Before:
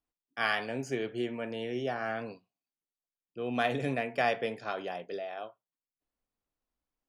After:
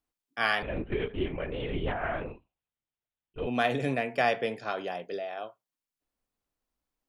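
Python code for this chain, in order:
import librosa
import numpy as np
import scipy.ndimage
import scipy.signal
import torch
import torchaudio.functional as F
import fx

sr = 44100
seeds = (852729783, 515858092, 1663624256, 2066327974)

y = fx.lpc_vocoder(x, sr, seeds[0], excitation='whisper', order=10, at=(0.62, 3.47))
y = y * 10.0 ** (2.5 / 20.0)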